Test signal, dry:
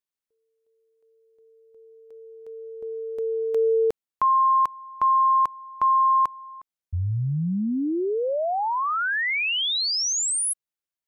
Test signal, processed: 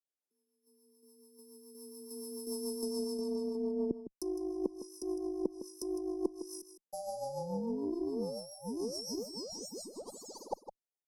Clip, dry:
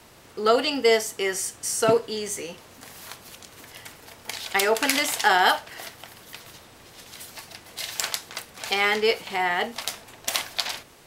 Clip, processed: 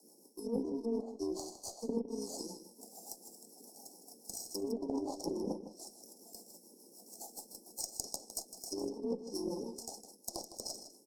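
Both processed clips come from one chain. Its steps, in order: bit-reversed sample order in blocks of 64 samples; spectral noise reduction 9 dB; steep high-pass 190 Hz 48 dB/octave; low-pass that closes with the level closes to 950 Hz, closed at -18.5 dBFS; peaking EQ 530 Hz +6.5 dB 2 oct; reverse; compression 16:1, threshold -35 dBFS; reverse; rotary cabinet horn 7 Hz; Chebyshev shaper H 3 -12 dB, 8 -41 dB, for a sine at -21 dBFS; Chebyshev band-stop 860–5000 Hz, order 4; on a send: delay 158 ms -11.5 dB; on the sum: trim +15.5 dB

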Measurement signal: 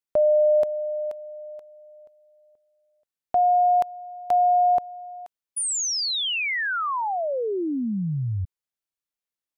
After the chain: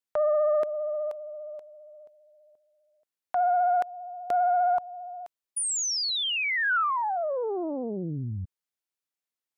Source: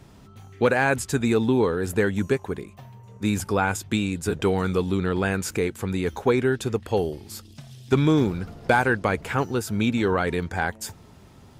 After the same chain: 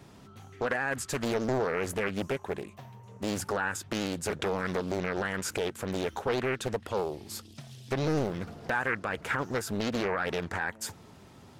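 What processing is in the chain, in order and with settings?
high-pass 140 Hz 6 dB/octave; dynamic bell 1.4 kHz, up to +7 dB, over -41 dBFS, Q 2.1; in parallel at +2.5 dB: compression, threshold -28 dBFS; on the sum: peak limiter -11 dBFS; vibrato 15 Hz 33 cents; loudspeaker Doppler distortion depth 0.94 ms; trim -8 dB

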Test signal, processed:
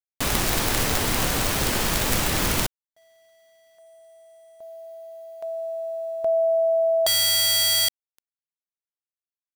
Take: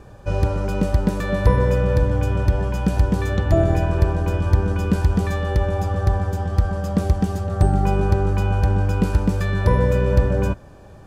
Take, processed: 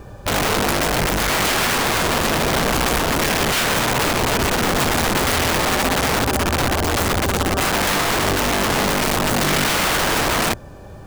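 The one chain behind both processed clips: bit crusher 11-bit; integer overflow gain 19.5 dB; trim +5.5 dB

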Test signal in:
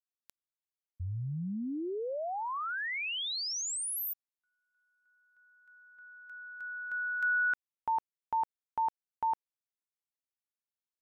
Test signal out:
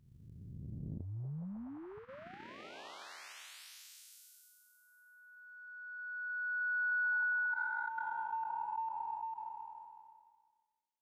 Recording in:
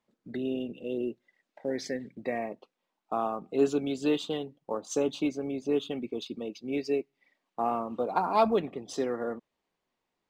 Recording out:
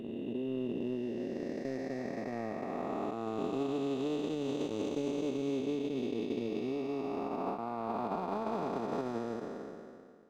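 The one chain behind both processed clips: spectral blur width 1180 ms; treble shelf 6.6 kHz -4 dB; band-stop 490 Hz, Q 12; peak limiter -31 dBFS; transient shaper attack +10 dB, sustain -7 dB; trim +3.5 dB

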